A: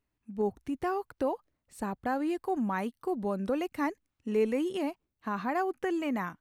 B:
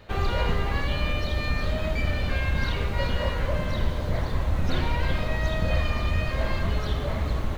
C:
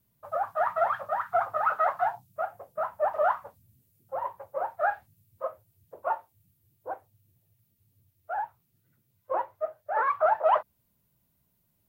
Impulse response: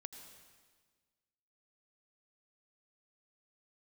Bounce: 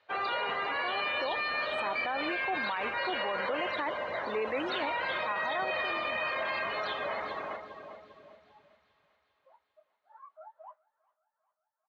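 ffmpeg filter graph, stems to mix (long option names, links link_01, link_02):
-filter_complex "[0:a]dynaudnorm=framelen=190:gausssize=13:maxgain=12.5dB,volume=-3.5dB[link_01];[1:a]volume=3dB,asplit=2[link_02][link_03];[link_03]volume=-7.5dB[link_04];[2:a]flanger=delay=19:depth=4.7:speed=1.8,adelay=150,volume=-19.5dB,asplit=2[link_05][link_06];[link_06]volume=-13.5dB[link_07];[link_04][link_07]amix=inputs=2:normalize=0,aecho=0:1:399|798|1197|1596|1995|2394|2793|3192|3591:1|0.59|0.348|0.205|0.121|0.0715|0.0422|0.0249|0.0147[link_08];[link_01][link_02][link_05][link_08]amix=inputs=4:normalize=0,afftdn=noise_reduction=16:noise_floor=-34,highpass=750,lowpass=4400,alimiter=limit=-24dB:level=0:latency=1:release=15"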